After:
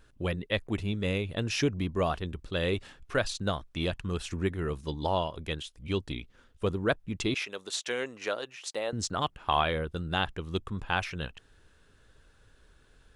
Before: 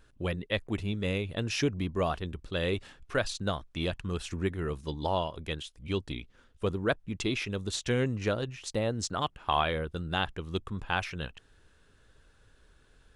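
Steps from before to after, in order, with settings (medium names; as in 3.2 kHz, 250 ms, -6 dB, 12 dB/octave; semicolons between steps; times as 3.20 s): 7.34–8.93 s: high-pass 520 Hz 12 dB/octave; trim +1 dB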